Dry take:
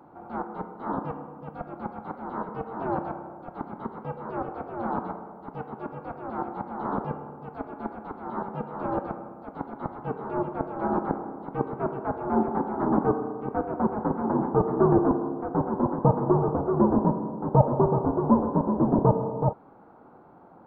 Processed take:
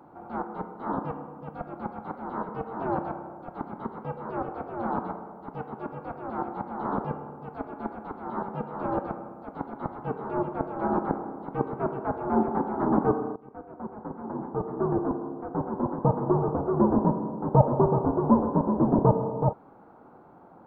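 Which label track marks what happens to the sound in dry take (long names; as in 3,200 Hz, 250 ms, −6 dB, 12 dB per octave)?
13.360000	17.240000	fade in, from −17.5 dB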